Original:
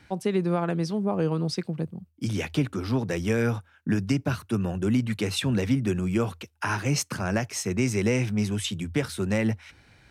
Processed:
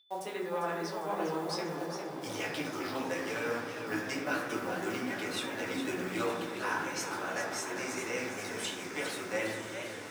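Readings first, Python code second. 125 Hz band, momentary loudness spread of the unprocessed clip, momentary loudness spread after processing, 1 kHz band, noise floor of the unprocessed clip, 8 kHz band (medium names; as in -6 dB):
-20.5 dB, 6 LU, 3 LU, -0.5 dB, -60 dBFS, -6.0 dB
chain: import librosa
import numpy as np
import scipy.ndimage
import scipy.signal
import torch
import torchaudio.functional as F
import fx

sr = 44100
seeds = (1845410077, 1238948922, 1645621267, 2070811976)

p1 = fx.delta_hold(x, sr, step_db=-44.5)
p2 = scipy.signal.sosfilt(scipy.signal.butter(2, 610.0, 'highpass', fs=sr, output='sos'), p1)
p3 = fx.rider(p2, sr, range_db=4, speed_s=0.5)
p4 = p3 + 10.0 ** (-55.0 / 20.0) * np.sin(2.0 * np.pi * 3500.0 * np.arange(len(p3)) / sr)
p5 = p4 + fx.echo_diffused(p4, sr, ms=1033, feedback_pct=66, wet_db=-10, dry=0)
p6 = fx.rev_fdn(p5, sr, rt60_s=1.2, lf_ratio=1.45, hf_ratio=0.35, size_ms=55.0, drr_db=-5.0)
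p7 = fx.echo_warbled(p6, sr, ms=405, feedback_pct=56, rate_hz=2.8, cents=165, wet_db=-8)
y = p7 * librosa.db_to_amplitude(-8.5)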